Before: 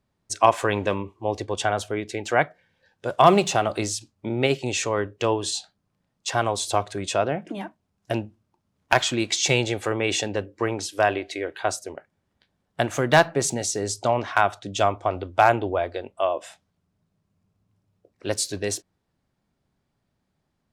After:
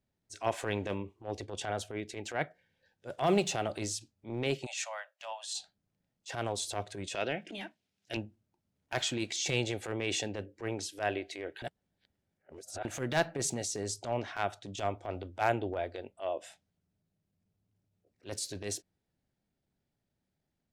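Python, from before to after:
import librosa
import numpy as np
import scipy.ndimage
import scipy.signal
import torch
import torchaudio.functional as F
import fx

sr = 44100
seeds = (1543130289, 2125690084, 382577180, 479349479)

y = fx.steep_highpass(x, sr, hz=590.0, slope=96, at=(4.65, 5.54), fade=0.02)
y = fx.weighting(y, sr, curve='D', at=(7.15, 8.17))
y = fx.edit(y, sr, fx.reverse_span(start_s=11.62, length_s=1.23), tone=tone)
y = fx.peak_eq(y, sr, hz=1100.0, db=-9.0, octaves=0.5)
y = fx.transient(y, sr, attack_db=-12, sustain_db=0)
y = y * librosa.db_to_amplitude(-7.5)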